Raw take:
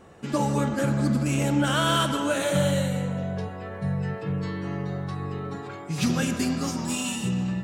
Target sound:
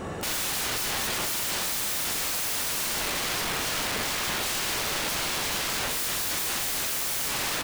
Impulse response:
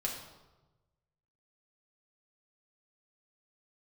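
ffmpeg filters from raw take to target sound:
-filter_complex "[0:a]acontrast=20,alimiter=limit=-18dB:level=0:latency=1:release=244,acontrast=43,aeval=exprs='(mod(29.9*val(0)+1,2)-1)/29.9':channel_layout=same,asplit=2[link_01][link_02];[link_02]adelay=46,volume=-10.5dB[link_03];[link_01][link_03]amix=inputs=2:normalize=0,volume=5dB"

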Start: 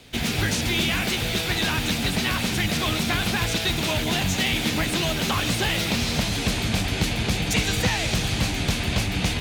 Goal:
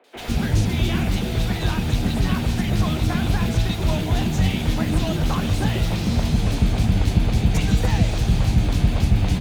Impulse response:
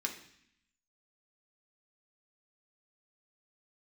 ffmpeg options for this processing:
-filter_complex "[0:a]lowshelf=frequency=83:gain=10.5,acrusher=bits=7:mode=log:mix=0:aa=0.000001,tiltshelf=frequency=1300:gain=5.5,acrossover=split=400|2100[link_01][link_02][link_03];[link_03]adelay=40[link_04];[link_01]adelay=150[link_05];[link_05][link_02][link_04]amix=inputs=3:normalize=0,volume=-2dB"

